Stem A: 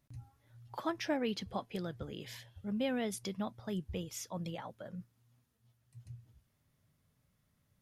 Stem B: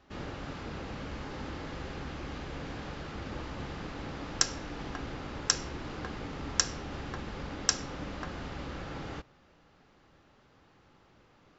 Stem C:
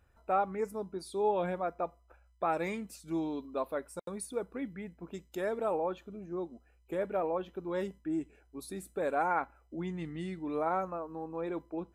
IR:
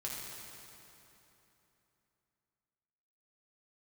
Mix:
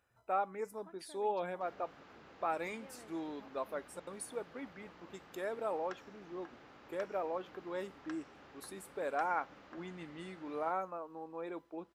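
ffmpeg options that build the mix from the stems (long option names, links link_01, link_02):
-filter_complex "[0:a]afwtdn=0.00501,lowpass=4300,alimiter=level_in=4dB:limit=-24dB:level=0:latency=1:release=475,volume=-4dB,volume=-16dB[link_01];[1:a]acrossover=split=2600[link_02][link_03];[link_03]acompressor=threshold=-57dB:ratio=4:attack=1:release=60[link_04];[link_02][link_04]amix=inputs=2:normalize=0,adelay=1500,volume=-13dB[link_05];[2:a]volume=-3dB[link_06];[link_01][link_05][link_06]amix=inputs=3:normalize=0,highpass=frequency=460:poles=1"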